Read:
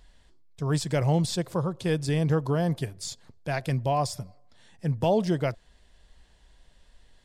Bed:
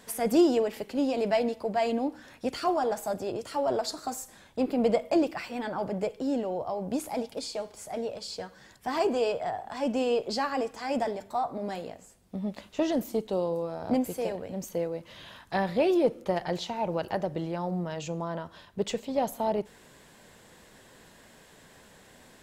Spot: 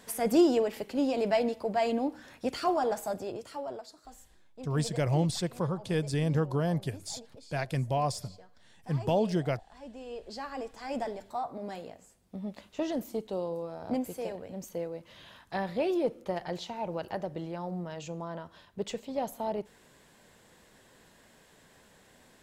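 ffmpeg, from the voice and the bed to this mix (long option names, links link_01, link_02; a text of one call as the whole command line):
ffmpeg -i stem1.wav -i stem2.wav -filter_complex "[0:a]adelay=4050,volume=-3.5dB[link_01];[1:a]volume=11.5dB,afade=type=out:start_time=2.94:duration=0.93:silence=0.149624,afade=type=in:start_time=10.02:duration=0.98:silence=0.237137[link_02];[link_01][link_02]amix=inputs=2:normalize=0" out.wav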